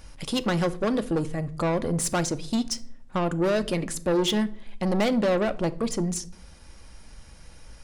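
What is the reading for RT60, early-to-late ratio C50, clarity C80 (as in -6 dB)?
0.65 s, 19.0 dB, 23.0 dB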